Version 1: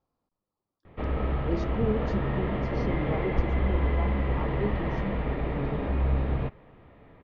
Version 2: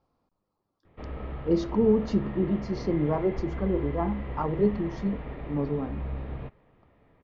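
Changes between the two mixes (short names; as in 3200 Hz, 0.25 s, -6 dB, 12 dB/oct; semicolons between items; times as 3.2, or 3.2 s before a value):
speech +7.5 dB; background -8.5 dB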